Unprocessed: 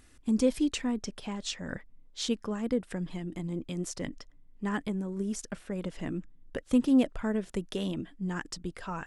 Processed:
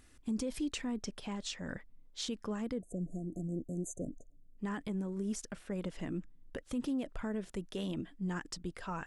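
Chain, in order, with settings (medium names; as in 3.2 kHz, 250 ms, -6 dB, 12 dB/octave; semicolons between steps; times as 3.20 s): spectral selection erased 2.80–4.58 s, 720–6100 Hz; peak limiter -25.5 dBFS, peak gain reduction 11.5 dB; trim -3 dB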